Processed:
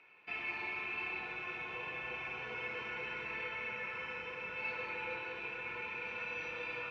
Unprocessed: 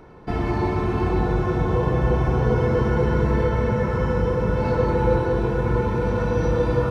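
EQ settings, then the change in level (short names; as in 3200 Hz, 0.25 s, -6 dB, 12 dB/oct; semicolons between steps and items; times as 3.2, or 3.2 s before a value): band-pass 2500 Hz, Q 17; +13.0 dB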